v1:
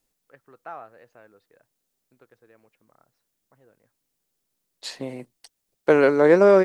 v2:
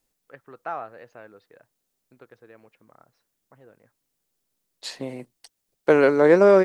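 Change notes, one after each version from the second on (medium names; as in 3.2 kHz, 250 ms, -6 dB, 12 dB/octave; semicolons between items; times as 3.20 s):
first voice +6.5 dB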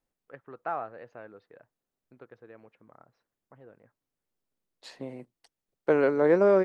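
second voice -6.0 dB; master: add treble shelf 3.1 kHz -11 dB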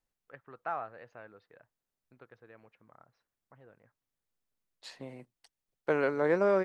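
master: add peaking EQ 340 Hz -7 dB 2.4 oct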